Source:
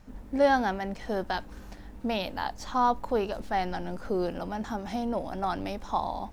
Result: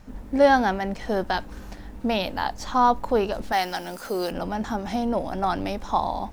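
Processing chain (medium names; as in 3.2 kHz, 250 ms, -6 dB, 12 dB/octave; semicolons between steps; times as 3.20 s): 3.52–4.31 s: RIAA curve recording; trim +5.5 dB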